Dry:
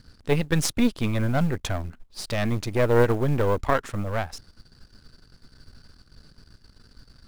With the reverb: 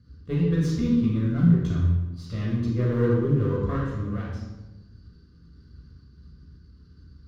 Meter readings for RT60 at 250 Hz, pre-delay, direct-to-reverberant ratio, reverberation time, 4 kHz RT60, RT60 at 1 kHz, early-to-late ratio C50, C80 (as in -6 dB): 1.3 s, 3 ms, -6.0 dB, 1.1 s, 0.75 s, 0.95 s, 0.0 dB, 2.5 dB